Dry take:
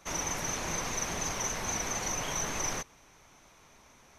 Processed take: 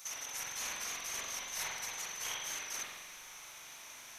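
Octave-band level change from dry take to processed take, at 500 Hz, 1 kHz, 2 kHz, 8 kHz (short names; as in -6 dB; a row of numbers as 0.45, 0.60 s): -14.5, -10.0, -4.5, -6.0 dB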